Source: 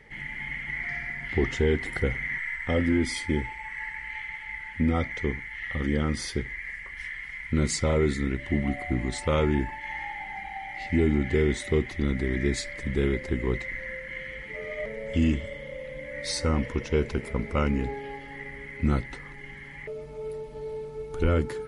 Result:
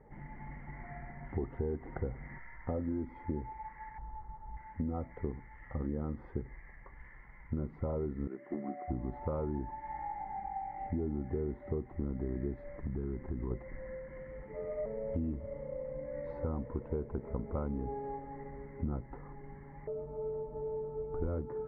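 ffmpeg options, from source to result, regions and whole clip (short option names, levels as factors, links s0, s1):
-filter_complex "[0:a]asettb=1/sr,asplit=3[s0][s1][s2];[s0]atrim=end=3.984[s3];[s1]atrim=start=3.98:end=4.57,asetpts=PTS-STARTPTS,afade=t=in:d=0.004:c=qsin,afade=t=out:st=0.586:d=0.004:c=qsin,lowpass=f=1200:w=0.5412,lowpass=f=1200:w=1.3066,lowshelf=f=120:g=10[s4];[s2]atrim=start=4.566[s5];[s3][s4]acrossfade=d=0.004:c1=hsin:c2=qsin[s6];[s6][s5]acrossfade=d=0.004:c1=qsin:c2=hsin,asettb=1/sr,asplit=3[s7][s8][s9];[s7]atrim=end=8.274[s10];[s8]atrim=start=8.27:end=8.88,asetpts=PTS-STARTPTS,afade=t=in:d=0.004:c=qsin,afade=t=out:st=0.606:d=0.004:c=qsin,highpass=f=240:w=0.5412,highpass=f=240:w=1.3066,equalizer=f=260:t=q:w=4:g=-9,equalizer=f=520:t=q:w=4:g=-6,equalizer=f=920:t=q:w=4:g=-10,lowpass=f=3100:w=0.5412,lowpass=f=3100:w=1.3066,aeval=exprs='clip(val(0),-1,0.0531)':c=same[s11];[s9]atrim=start=8.876[s12];[s10][s11]acrossfade=d=0.004:c1=hsin:c2=qsin[s13];[s13][s12]acrossfade=d=0.004:c1=qsin:c2=hsin,asettb=1/sr,asplit=3[s14][s15][s16];[s14]atrim=end=12.794[s17];[s15]atrim=start=12.79:end=13.51,asetpts=PTS-STARTPTS,afade=t=in:d=0.004:c=qsin,afade=t=out:st=0.716:d=0.004:c=qsin,equalizer=f=550:w=2.5:g=-12.5,acompressor=threshold=0.0398:ratio=6:attack=3.2:release=140:knee=1:detection=peak[s18];[s16]atrim=start=13.506[s19];[s17][s18]acrossfade=d=0.004:c1=hsin:c2=qsin[s20];[s20][s19]acrossfade=d=0.004:c1=qsin:c2=hsin,lowpass=f=1100:w=0.5412,lowpass=f=1100:w=1.3066,equalizer=f=780:t=o:w=0.77:g=2.5,acompressor=threshold=0.0316:ratio=6,volume=0.75"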